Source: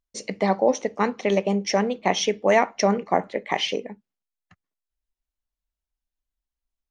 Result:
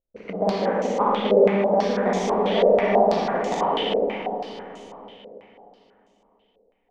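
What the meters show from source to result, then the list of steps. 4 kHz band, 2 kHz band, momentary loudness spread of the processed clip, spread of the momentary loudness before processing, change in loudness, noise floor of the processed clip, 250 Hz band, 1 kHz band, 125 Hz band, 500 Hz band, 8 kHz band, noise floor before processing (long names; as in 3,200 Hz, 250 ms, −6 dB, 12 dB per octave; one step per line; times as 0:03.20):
−2.5 dB, −2.5 dB, 15 LU, 7 LU, +2.0 dB, −67 dBFS, +0.5 dB, +2.5 dB, +0.5 dB, +4.0 dB, can't be measured, below −85 dBFS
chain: running median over 25 samples
downward compressor, threshold −22 dBFS, peak gain reduction 8 dB
four-comb reverb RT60 3.8 s, DRR −8 dB
low-pass on a step sequencer 6.1 Hz 530–6,800 Hz
level −3.5 dB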